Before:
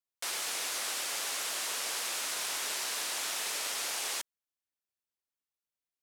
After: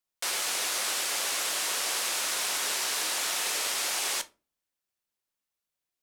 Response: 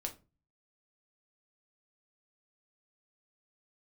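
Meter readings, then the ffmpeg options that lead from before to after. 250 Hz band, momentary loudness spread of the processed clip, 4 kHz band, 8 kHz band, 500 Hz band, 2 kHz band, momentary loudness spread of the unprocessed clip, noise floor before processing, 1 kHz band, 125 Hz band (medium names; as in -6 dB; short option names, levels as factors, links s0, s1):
+5.5 dB, 2 LU, +5.0 dB, +5.0 dB, +5.5 dB, +5.0 dB, 2 LU, under -85 dBFS, +5.0 dB, no reading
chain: -filter_complex "[0:a]asplit=2[s0][s1];[1:a]atrim=start_sample=2205[s2];[s1][s2]afir=irnorm=-1:irlink=0,volume=1[s3];[s0][s3]amix=inputs=2:normalize=0"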